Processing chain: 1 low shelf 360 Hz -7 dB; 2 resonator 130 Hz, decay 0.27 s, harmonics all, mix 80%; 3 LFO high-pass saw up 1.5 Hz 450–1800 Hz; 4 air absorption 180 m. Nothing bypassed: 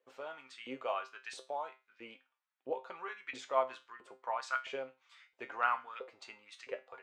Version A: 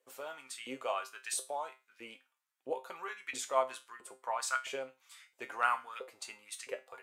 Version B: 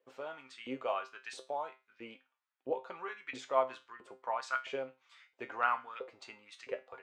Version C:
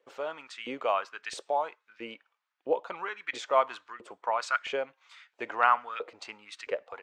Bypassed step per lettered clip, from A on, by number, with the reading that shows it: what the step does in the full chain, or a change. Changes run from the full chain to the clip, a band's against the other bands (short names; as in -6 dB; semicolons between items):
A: 4, 8 kHz band +15.5 dB; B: 1, 250 Hz band +4.0 dB; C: 2, momentary loudness spread change -1 LU